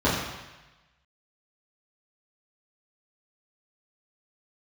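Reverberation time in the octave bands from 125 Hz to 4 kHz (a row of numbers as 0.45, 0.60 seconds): 1.2, 0.95, 1.0, 1.1, 1.2, 1.1 seconds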